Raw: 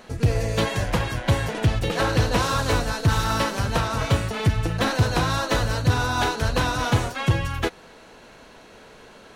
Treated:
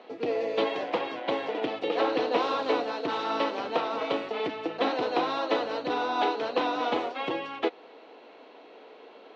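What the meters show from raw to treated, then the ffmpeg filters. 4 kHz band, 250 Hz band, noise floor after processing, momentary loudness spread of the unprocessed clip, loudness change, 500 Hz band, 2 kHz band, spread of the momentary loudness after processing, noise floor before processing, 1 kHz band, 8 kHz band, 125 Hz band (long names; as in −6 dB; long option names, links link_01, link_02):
−7.0 dB, −5.5 dB, −51 dBFS, 3 LU, −6.0 dB, 0.0 dB, −8.5 dB, 5 LU, −48 dBFS, −2.5 dB, below −20 dB, −31.5 dB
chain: -af "highpass=frequency=290:width=0.5412,highpass=frequency=290:width=1.3066,equalizer=frequency=290:width_type=q:width=4:gain=6,equalizer=frequency=460:width_type=q:width=4:gain=5,equalizer=frequency=740:width_type=q:width=4:gain=5,equalizer=frequency=1600:width_type=q:width=4:gain=-8,lowpass=frequency=3800:width=0.5412,lowpass=frequency=3800:width=1.3066,volume=-4dB"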